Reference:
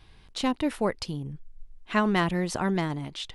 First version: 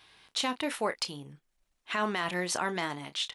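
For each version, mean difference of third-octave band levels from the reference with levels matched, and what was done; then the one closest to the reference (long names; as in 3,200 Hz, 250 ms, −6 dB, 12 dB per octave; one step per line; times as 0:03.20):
5.5 dB: high-pass filter 1,100 Hz 6 dB per octave
notch filter 4,800 Hz, Q 30
double-tracking delay 28 ms −12 dB
brickwall limiter −22 dBFS, peak gain reduction 9.5 dB
level +4 dB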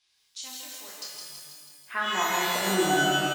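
15.0 dB: band-pass filter sweep 6,400 Hz → 200 Hz, 0:01.09–0:03.13
double-tracking delay 27 ms −5 dB
on a send: repeating echo 163 ms, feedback 59%, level −5 dB
on the sum: reverb with rising layers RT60 1.3 s, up +12 semitones, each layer −2 dB, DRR −1.5 dB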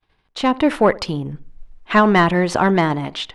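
3.5 dB: downward expander −43 dBFS
automatic gain control gain up to 8.5 dB
mid-hump overdrive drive 12 dB, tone 1,400 Hz, clips at −3.5 dBFS
tape delay 69 ms, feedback 45%, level −18 dB, low-pass 1,000 Hz
level +3 dB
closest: third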